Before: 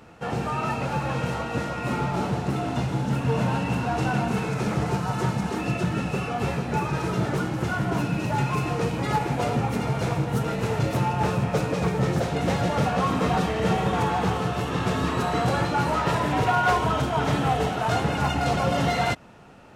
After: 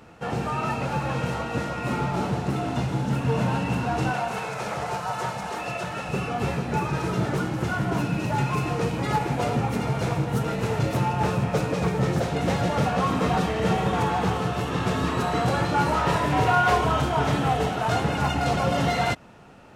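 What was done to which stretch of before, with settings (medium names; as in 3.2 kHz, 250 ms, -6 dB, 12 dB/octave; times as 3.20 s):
4.13–6.09 s: resonant low shelf 430 Hz -10 dB, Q 1.5
15.66–17.28 s: doubling 28 ms -6 dB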